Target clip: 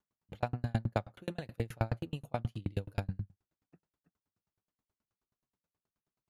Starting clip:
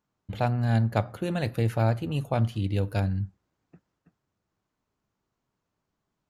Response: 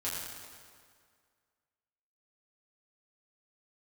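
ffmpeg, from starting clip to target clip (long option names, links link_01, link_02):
-filter_complex "[0:a]asplit=2[link_01][link_02];[1:a]atrim=start_sample=2205,atrim=end_sample=3528,asetrate=29988,aresample=44100[link_03];[link_02][link_03]afir=irnorm=-1:irlink=0,volume=-26dB[link_04];[link_01][link_04]amix=inputs=2:normalize=0,aeval=exprs='val(0)*pow(10,-38*if(lt(mod(9.4*n/s,1),2*abs(9.4)/1000),1-mod(9.4*n/s,1)/(2*abs(9.4)/1000),(mod(9.4*n/s,1)-2*abs(9.4)/1000)/(1-2*abs(9.4)/1000))/20)':channel_layout=same,volume=-2dB"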